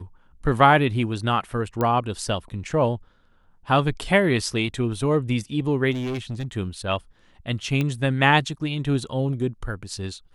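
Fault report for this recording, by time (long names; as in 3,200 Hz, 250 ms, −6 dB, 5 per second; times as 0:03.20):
0:01.81: click −12 dBFS
0:05.91–0:06.45: clipping −24.5 dBFS
0:07.81: click −13 dBFS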